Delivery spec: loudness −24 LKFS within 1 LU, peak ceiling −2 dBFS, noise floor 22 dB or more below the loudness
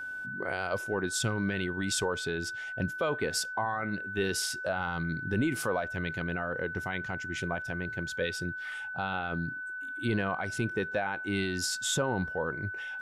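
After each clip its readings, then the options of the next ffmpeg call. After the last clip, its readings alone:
interfering tone 1,500 Hz; level of the tone −36 dBFS; integrated loudness −32.0 LKFS; sample peak −18.5 dBFS; target loudness −24.0 LKFS
→ -af "bandreject=frequency=1500:width=30"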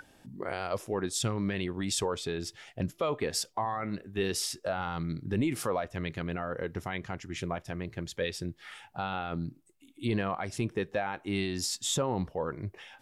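interfering tone none found; integrated loudness −33.5 LKFS; sample peak −19.5 dBFS; target loudness −24.0 LKFS
→ -af "volume=9.5dB"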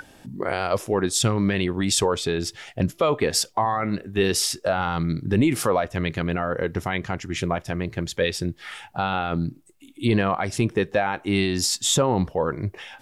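integrated loudness −24.0 LKFS; sample peak −10.0 dBFS; background noise floor −53 dBFS

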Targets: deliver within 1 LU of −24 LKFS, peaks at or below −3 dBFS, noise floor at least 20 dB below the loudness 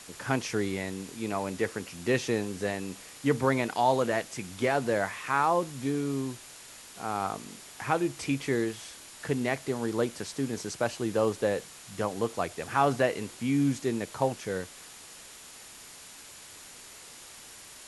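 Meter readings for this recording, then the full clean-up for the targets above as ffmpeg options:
interfering tone 7,000 Hz; level of the tone −57 dBFS; background noise floor −49 dBFS; target noise floor −50 dBFS; integrated loudness −30.0 LKFS; sample peak −10.5 dBFS; target loudness −24.0 LKFS
→ -af "bandreject=frequency=7000:width=30"
-af "afftdn=noise_reduction=6:noise_floor=-49"
-af "volume=6dB"

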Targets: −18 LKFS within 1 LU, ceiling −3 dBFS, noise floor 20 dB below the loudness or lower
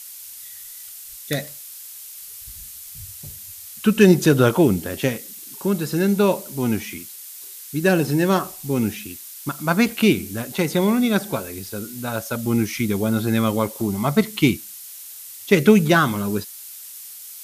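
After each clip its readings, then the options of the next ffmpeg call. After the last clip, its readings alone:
background noise floor −39 dBFS; target noise floor −41 dBFS; integrated loudness −20.5 LKFS; sample peak −1.5 dBFS; target loudness −18.0 LKFS
→ -af "afftdn=noise_reduction=6:noise_floor=-39"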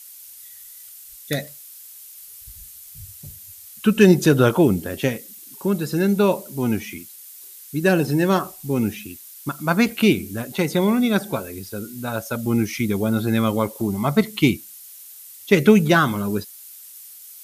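background noise floor −42 dBFS; integrated loudness −20.5 LKFS; sample peak −1.5 dBFS; target loudness −18.0 LKFS
→ -af "volume=2.5dB,alimiter=limit=-3dB:level=0:latency=1"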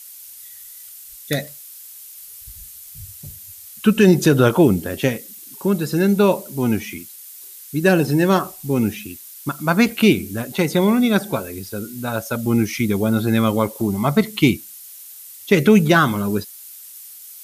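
integrated loudness −18.5 LKFS; sample peak −3.0 dBFS; background noise floor −40 dBFS

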